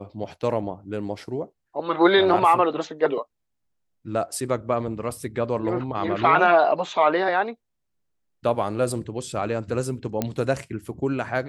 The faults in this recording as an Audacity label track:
10.220000	10.220000	click −10 dBFS

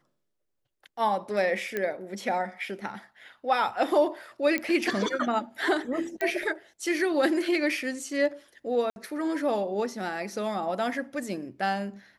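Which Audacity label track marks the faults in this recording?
1.770000	1.770000	click −16 dBFS
4.580000	4.580000	click −14 dBFS
6.210000	6.210000	click −17 dBFS
8.900000	8.960000	drop-out 61 ms

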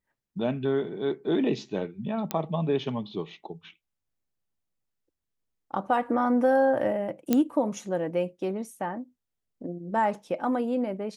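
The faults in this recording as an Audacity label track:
2.310000	2.310000	click −12 dBFS
7.330000	7.330000	click −9 dBFS

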